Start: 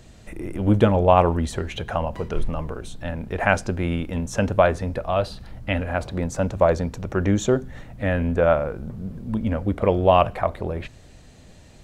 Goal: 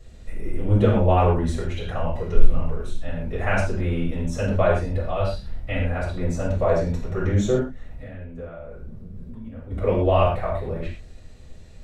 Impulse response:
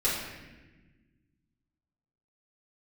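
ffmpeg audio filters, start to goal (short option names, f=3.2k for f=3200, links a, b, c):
-filter_complex "[0:a]lowshelf=f=120:g=6.5,asplit=3[a][b][c];[a]afade=t=out:st=7.61:d=0.02[d];[b]acompressor=threshold=-32dB:ratio=12,afade=t=in:st=7.61:d=0.02,afade=t=out:st=9.7:d=0.02[e];[c]afade=t=in:st=9.7:d=0.02[f];[d][e][f]amix=inputs=3:normalize=0[g];[1:a]atrim=start_sample=2205,atrim=end_sample=6174[h];[g][h]afir=irnorm=-1:irlink=0,volume=-12.5dB"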